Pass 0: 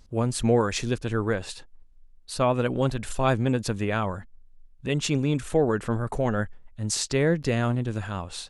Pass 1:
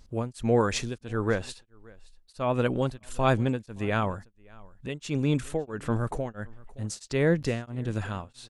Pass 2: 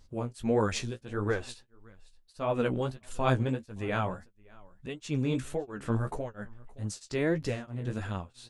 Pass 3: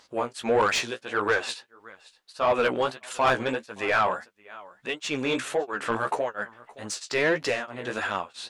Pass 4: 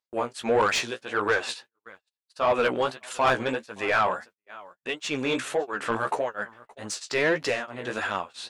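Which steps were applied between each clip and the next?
echo 0.57 s -23.5 dB; beating tremolo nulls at 1.5 Hz
flange 1.6 Hz, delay 9.3 ms, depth 8.9 ms, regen +22%
HPF 650 Hz 6 dB/oct; overdrive pedal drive 20 dB, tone 2700 Hz, clips at -15 dBFS; gain +3.5 dB
gate -47 dBFS, range -37 dB

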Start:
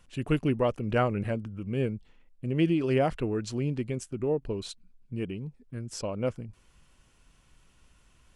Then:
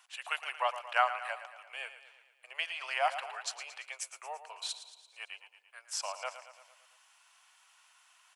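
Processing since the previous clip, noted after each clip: steep high-pass 720 Hz 48 dB/oct; on a send: feedback echo 0.113 s, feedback 57%, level -12 dB; on the sum: gain +3.5 dB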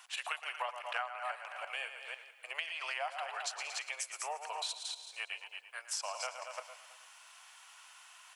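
reverse delay 0.165 s, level -8 dB; compressor 6:1, threshold -43 dBFS, peak gain reduction 20 dB; gain +7 dB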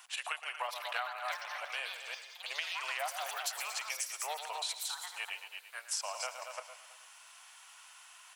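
high shelf 8000 Hz +5 dB; echoes that change speed 0.631 s, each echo +6 st, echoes 3, each echo -6 dB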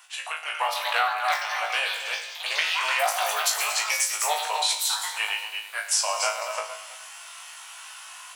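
AGC gain up to 9 dB; flutter echo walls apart 3.2 m, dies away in 0.29 s; gain +2 dB

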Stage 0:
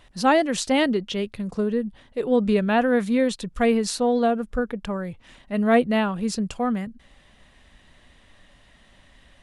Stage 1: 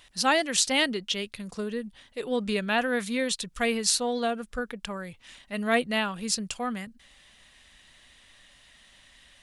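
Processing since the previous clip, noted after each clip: tilt shelf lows -8 dB, about 1500 Hz; gain -1.5 dB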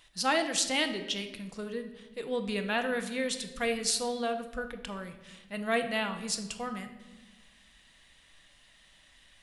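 shoebox room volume 640 m³, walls mixed, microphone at 0.67 m; gain -5 dB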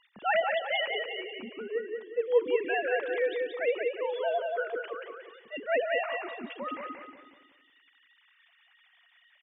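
sine-wave speech; on a send: feedback echo 0.181 s, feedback 39%, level -4 dB

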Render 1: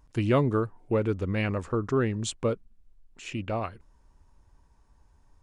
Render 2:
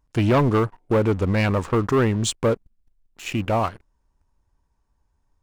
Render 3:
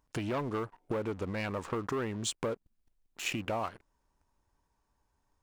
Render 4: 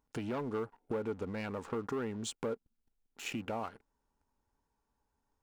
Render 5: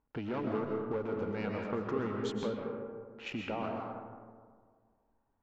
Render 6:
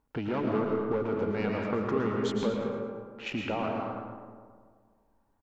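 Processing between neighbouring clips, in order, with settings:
dynamic EQ 920 Hz, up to +6 dB, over -47 dBFS, Q 2.3; sample leveller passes 3; gain -2.5 dB
compressor 12:1, threshold -29 dBFS, peak gain reduction 14 dB; low shelf 150 Hz -11 dB
small resonant body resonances 240/440/820/1400 Hz, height 7 dB, ringing for 35 ms; gain -6.5 dB
low-pass opened by the level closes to 2000 Hz, open at -34 dBFS; running mean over 5 samples; digital reverb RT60 1.8 s, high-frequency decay 0.35×, pre-delay 90 ms, DRR 0.5 dB
feedback echo 0.111 s, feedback 41%, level -9 dB; gain +5 dB

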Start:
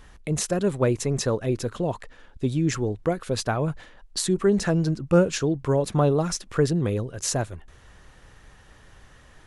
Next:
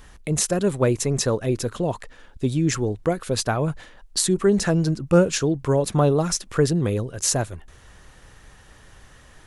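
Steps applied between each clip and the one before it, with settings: high shelf 6900 Hz +7 dB; gain +2 dB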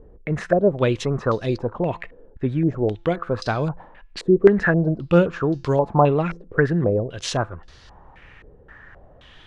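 resonator 170 Hz, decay 0.49 s, harmonics all, mix 30%; stepped low-pass 3.8 Hz 460–4600 Hz; gain +2.5 dB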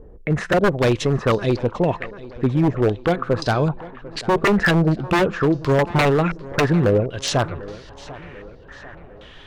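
wavefolder -14.5 dBFS; tape echo 0.745 s, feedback 59%, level -16 dB, low-pass 4400 Hz; gain +4 dB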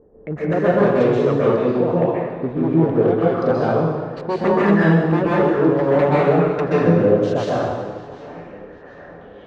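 band-pass 440 Hz, Q 0.61; plate-style reverb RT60 1.4 s, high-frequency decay 0.95×, pre-delay 0.115 s, DRR -7.5 dB; gain -3.5 dB

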